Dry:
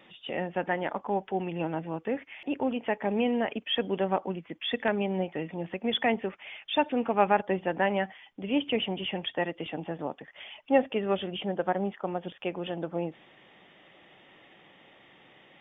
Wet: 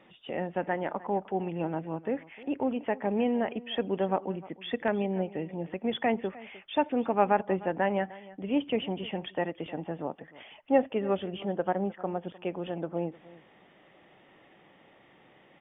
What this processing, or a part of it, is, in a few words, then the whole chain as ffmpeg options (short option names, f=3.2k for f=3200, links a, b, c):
through cloth: -filter_complex "[0:a]highshelf=f=3.3k:g=-15.5,asettb=1/sr,asplit=3[a][b][c];[a]atrim=end=5.024[d];[b]atrim=start=5.02:end=5.66,asetpts=PTS-STARTPTS,afade=t=in:d=0.004:c=qsin,afade=t=out:st=0.636:d=0.004:c=qsin,equalizer=f=1.3k:t=o:w=0.82:g=-5.5[e];[c]atrim=start=5.656[f];[d][e]acrossfade=d=0.004:c1=hsin:c2=qsin[g];[g][f]acrossfade=d=0.004:c1=qsin:c2=hsin,aecho=1:1:305:0.106"